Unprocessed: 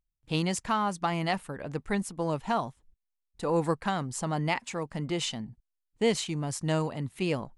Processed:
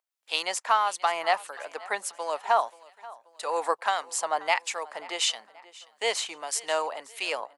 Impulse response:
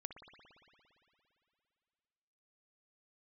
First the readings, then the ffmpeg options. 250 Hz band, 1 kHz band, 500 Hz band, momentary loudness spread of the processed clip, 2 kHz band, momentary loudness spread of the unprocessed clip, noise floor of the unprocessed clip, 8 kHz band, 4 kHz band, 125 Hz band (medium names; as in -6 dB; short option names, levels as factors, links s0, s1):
-19.0 dB, +5.5 dB, 0.0 dB, 13 LU, +5.5 dB, 7 LU, -83 dBFS, +6.0 dB, +6.0 dB, under -35 dB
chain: -filter_complex "[0:a]highpass=f=590:w=0.5412,highpass=f=590:w=1.3066,aecho=1:1:532|1064|1596:0.0944|0.0406|0.0175,acrossover=split=1700[s0][s1];[s0]aeval=exprs='val(0)*(1-0.5/2+0.5/2*cos(2*PI*1.6*n/s))':c=same[s2];[s1]aeval=exprs='val(0)*(1-0.5/2-0.5/2*cos(2*PI*1.6*n/s))':c=same[s3];[s2][s3]amix=inputs=2:normalize=0,volume=2.51"